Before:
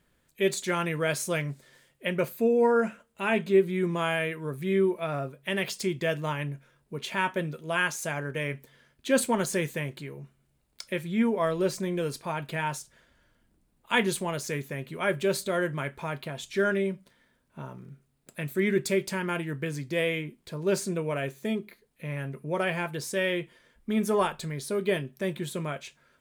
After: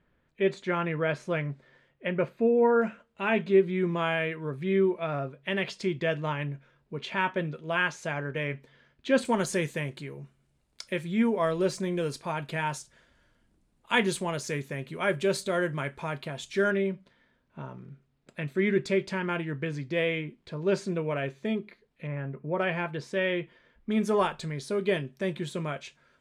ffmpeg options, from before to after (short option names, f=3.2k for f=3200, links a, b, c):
-af "asetnsamples=n=441:p=0,asendcmd='2.82 lowpass f 4000;9.25 lowpass f 8900;16.71 lowpass f 4100;22.07 lowpass f 1700;22.59 lowpass f 3300;23.91 lowpass f 6600',lowpass=2.3k"